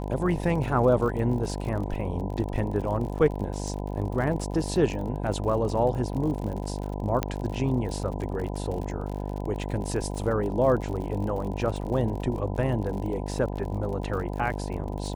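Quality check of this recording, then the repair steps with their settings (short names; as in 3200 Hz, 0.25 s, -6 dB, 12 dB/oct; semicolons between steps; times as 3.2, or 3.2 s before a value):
buzz 50 Hz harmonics 20 -32 dBFS
crackle 55/s -34 dBFS
7.23 pop -11 dBFS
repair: de-click; de-hum 50 Hz, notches 20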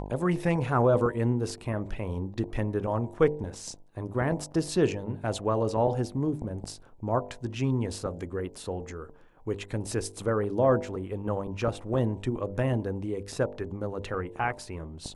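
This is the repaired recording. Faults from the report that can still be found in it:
none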